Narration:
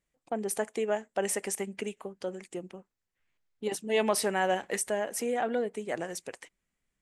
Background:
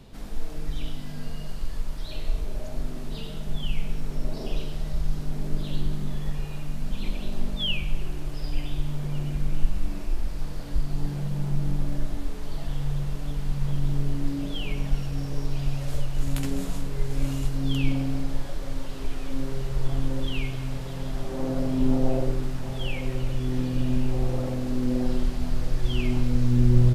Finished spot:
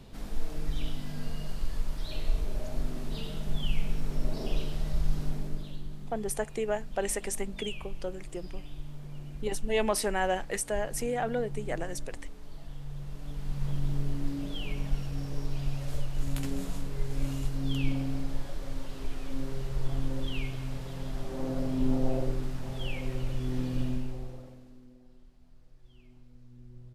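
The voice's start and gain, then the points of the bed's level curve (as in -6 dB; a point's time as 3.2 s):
5.80 s, -1.0 dB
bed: 5.27 s -1.5 dB
5.8 s -13 dB
12.86 s -13 dB
13.65 s -5 dB
23.82 s -5 dB
25 s -32 dB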